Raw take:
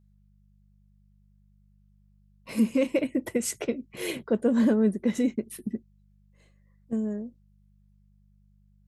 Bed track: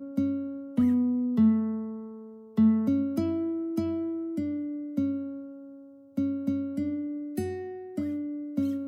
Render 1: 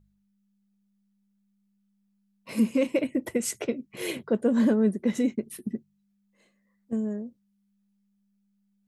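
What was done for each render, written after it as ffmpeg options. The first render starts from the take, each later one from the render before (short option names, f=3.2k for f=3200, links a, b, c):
-af "bandreject=f=50:t=h:w=4,bandreject=f=100:t=h:w=4,bandreject=f=150:t=h:w=4"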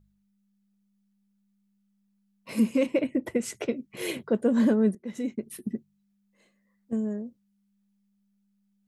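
-filter_complex "[0:a]asettb=1/sr,asplit=3[a][b][c];[a]atrim=end=2.864[d];[b]atrim=start=2.86:end=3.6,asetpts=PTS-STARTPTS,afade=t=in:d=0.004:c=qsin,afade=t=out:st=0.736:d=0.004:c=qsin,aemphasis=mode=reproduction:type=cd[e];[c]atrim=start=3.596[f];[d][e]acrossfade=d=0.004:c1=hsin:c2=qsin[g];[g][f]acrossfade=d=0.004:c1=qsin:c2=hsin,asplit=2[h][i];[h]atrim=end=4.95,asetpts=PTS-STARTPTS,afade=t=out:st=4.946:d=0.004:c=hsin:silence=0.0944061[j];[i]atrim=start=4.95,asetpts=PTS-STARTPTS,afade=t=in:d=0.64:silence=0.0944061[k];[j][k]concat=n=2:v=0:a=1"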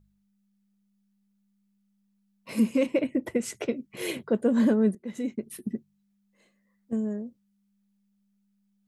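-filter_complex "[0:a]asettb=1/sr,asplit=3[a][b][c];[a]atrim=end=4.244[d];[b]atrim=start=4.24:end=5.26,asetpts=PTS-STARTPTS,afade=t=in:d=0.004:c=qsin,afade=t=out:st=1.016:d=0.004:c=qsin,bandreject=f=5.6k:w=11[e];[c]atrim=start=5.256[f];[d][e]acrossfade=d=0.004:c1=hsin:c2=qsin[g];[g][f]acrossfade=d=0.004:c1=qsin:c2=hsin"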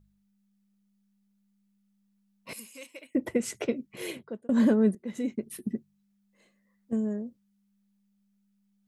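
-filter_complex "[0:a]asettb=1/sr,asplit=3[a][b][c];[a]atrim=end=2.534[d];[b]atrim=start=2.53:end=3.15,asetpts=PTS-STARTPTS,afade=t=in:d=0.004:c=qsin,afade=t=out:st=0.616:d=0.004:c=qsin,aderivative[e];[c]atrim=start=3.146[f];[d][e]acrossfade=d=0.004:c1=hsin:c2=qsin[g];[g][f]acrossfade=d=0.004:c1=qsin:c2=hsin,asplit=2[h][i];[h]atrim=end=4.49,asetpts=PTS-STARTPTS,afade=t=out:st=3.78:d=0.71[j];[i]atrim=start=4.49,asetpts=PTS-STARTPTS,afade=t=in:d=0.004:c=hsin[k];[j][k]concat=n=2:v=0:a=1"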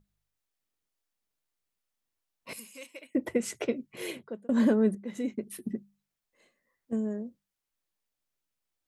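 -af "bass=f=250:g=-3,treble=f=4k:g=-1,bandreject=f=50:t=h:w=6,bandreject=f=100:t=h:w=6,bandreject=f=150:t=h:w=6,bandreject=f=200:t=h:w=6"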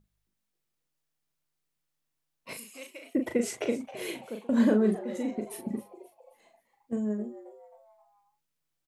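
-filter_complex "[0:a]asplit=2[a][b];[b]adelay=38,volume=-6dB[c];[a][c]amix=inputs=2:normalize=0,asplit=5[d][e][f][g][h];[e]adelay=266,afreqshift=150,volume=-16dB[i];[f]adelay=532,afreqshift=300,volume=-23.3dB[j];[g]adelay=798,afreqshift=450,volume=-30.7dB[k];[h]adelay=1064,afreqshift=600,volume=-38dB[l];[d][i][j][k][l]amix=inputs=5:normalize=0"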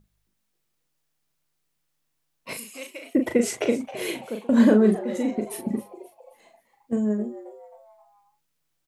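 -af "volume=6.5dB"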